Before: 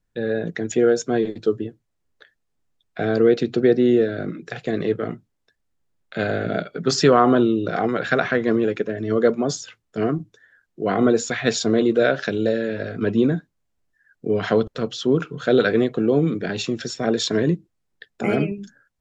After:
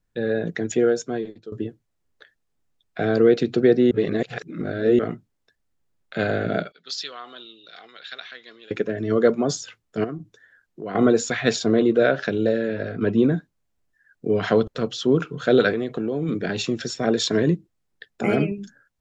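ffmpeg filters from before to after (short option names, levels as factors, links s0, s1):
-filter_complex "[0:a]asettb=1/sr,asplit=3[s0][s1][s2];[s0]atrim=end=6.724[s3];[s1]atrim=start=6.72:end=8.71,asetpts=PTS-STARTPTS,afade=t=in:d=0.004:c=qsin,afade=t=out:st=1.986:d=0.004:c=qsin,bandpass=f=3800:t=q:w=3.3[s4];[s2]atrim=start=8.706[s5];[s3][s4]acrossfade=d=0.004:c1=hsin:c2=qsin[s6];[s6][s5]acrossfade=d=0.004:c1=qsin:c2=hsin,asettb=1/sr,asplit=3[s7][s8][s9];[s7]atrim=end=10.044[s10];[s8]atrim=start=10.04:end=10.95,asetpts=PTS-STARTPTS,afade=t=in:d=0.004:c=qsin,afade=t=out:st=0.906:d=0.004:c=qsin,acompressor=threshold=0.0178:ratio=2:attack=3.2:release=140:knee=1:detection=peak[s11];[s9]atrim=start=10.946[s12];[s10][s11]acrossfade=d=0.004:c1=hsin:c2=qsin[s13];[s13][s12]acrossfade=d=0.004:c1=qsin:c2=hsin,asettb=1/sr,asplit=3[s14][s15][s16];[s14]atrim=end=11.564[s17];[s15]atrim=start=11.56:end=13.34,asetpts=PTS-STARTPTS,afade=t=in:d=0.004:c=qsin,afade=t=out:st=1.776:d=0.004:c=qsin,highshelf=f=4100:g=-7.5[s18];[s16]atrim=start=13.336[s19];[s17][s18]acrossfade=d=0.004:c1=hsin:c2=qsin[s20];[s20][s19]acrossfade=d=0.004:c1=qsin:c2=hsin,asettb=1/sr,asplit=3[s21][s22][s23];[s21]atrim=end=15.714[s24];[s22]atrim=start=15.71:end=16.29,asetpts=PTS-STARTPTS,afade=t=in:d=0.004:c=qsin,afade=t=out:st=0.576:d=0.004:c=qsin,acompressor=threshold=0.0891:ratio=6:attack=3.2:release=140:knee=1:detection=peak[s25];[s23]atrim=start=16.286[s26];[s24][s25]acrossfade=d=0.004:c1=hsin:c2=qsin[s27];[s27][s26]acrossfade=d=0.004:c1=qsin:c2=hsin,asplit=4[s28][s29][s30][s31];[s28]atrim=end=1.52,asetpts=PTS-STARTPTS,afade=t=out:st=0.65:d=0.87:silence=0.0944061[s32];[s29]atrim=start=1.52:end=3.912,asetpts=PTS-STARTPTS,afade=t=in:d=0.004:c=hsin:silence=0.0944061[s33];[s30]atrim=start=3.908:end=4.992,asetpts=PTS-STARTPTS,areverse[s34];[s31]atrim=start=4.988[s35];[s32][s33]concat=n=2:v=0:a=1[s36];[s36][s34]acrossfade=d=0.004:c1=hsin:c2=hsin[s37];[s37][s35]acrossfade=d=0.004:c1=hsin:c2=hsin"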